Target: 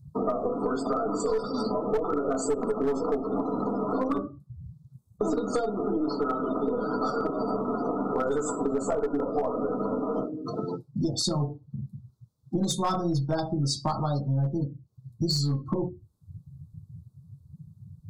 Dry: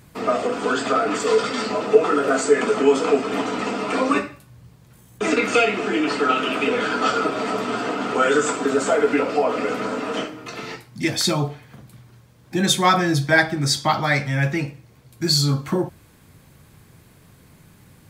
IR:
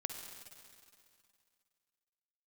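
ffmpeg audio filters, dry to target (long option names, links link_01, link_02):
-filter_complex "[0:a]asuperstop=centerf=2200:order=8:qfactor=0.94,acrossover=split=1500[link_01][link_02];[link_01]aeval=exprs='0.794*(cos(1*acos(clip(val(0)/0.794,-1,1)))-cos(1*PI/2))+0.251*(cos(2*acos(clip(val(0)/0.794,-1,1)))-cos(2*PI/2))+0.0398*(cos(3*acos(clip(val(0)/0.794,-1,1)))-cos(3*PI/2))':channel_layout=same[link_03];[link_02]acompressor=mode=upward:threshold=-52dB:ratio=2.5[link_04];[link_03][link_04]amix=inputs=2:normalize=0,lowshelf=frequency=280:gain=7.5,bandreject=frequency=60:width_type=h:width=6,bandreject=frequency=120:width_type=h:width=6,bandreject=frequency=180:width_type=h:width=6,bandreject=frequency=240:width_type=h:width=6,bandreject=frequency=300:width_type=h:width=6,bandreject=frequency=360:width_type=h:width=6,asplit=2[link_05][link_06];[1:a]atrim=start_sample=2205,atrim=end_sample=3969[link_07];[link_06][link_07]afir=irnorm=-1:irlink=0,volume=-7dB[link_08];[link_05][link_08]amix=inputs=2:normalize=0,afftdn=noise_reduction=35:noise_floor=-27,asoftclip=type=hard:threshold=-7.5dB,acompressor=threshold=-32dB:ratio=4,equalizer=frequency=2700:width=3:gain=-5.5,volume=4.5dB"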